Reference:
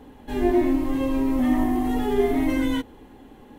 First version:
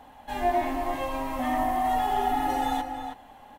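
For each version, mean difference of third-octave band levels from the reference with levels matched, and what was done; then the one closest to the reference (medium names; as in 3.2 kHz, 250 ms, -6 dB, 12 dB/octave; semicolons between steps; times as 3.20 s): 6.5 dB: spectral replace 2.09–2.78 s, 560–3200 Hz before; resonant low shelf 530 Hz -9 dB, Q 3; echo from a far wall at 55 m, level -7 dB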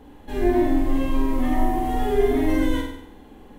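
2.5 dB: bass shelf 61 Hz +7 dB; hum notches 50/100/150/200/250 Hz; flutter echo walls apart 8.2 m, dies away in 0.73 s; trim -1.5 dB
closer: second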